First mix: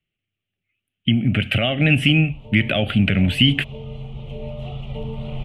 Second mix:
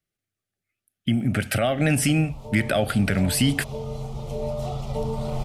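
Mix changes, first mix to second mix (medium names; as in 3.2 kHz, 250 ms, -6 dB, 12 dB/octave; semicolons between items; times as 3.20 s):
speech -5.0 dB; master: remove FFT filter 180 Hz 0 dB, 870 Hz -8 dB, 1.6 kHz -7 dB, 2.9 kHz +9 dB, 5 kHz -21 dB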